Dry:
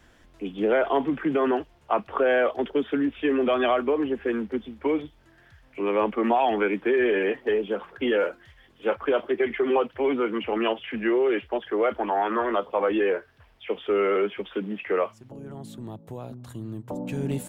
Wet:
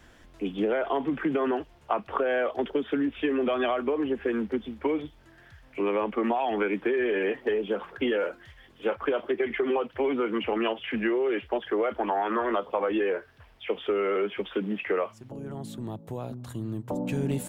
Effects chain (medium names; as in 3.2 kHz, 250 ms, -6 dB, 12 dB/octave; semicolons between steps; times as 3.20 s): compression, threshold -25 dBFS, peak gain reduction 8 dB; trim +2 dB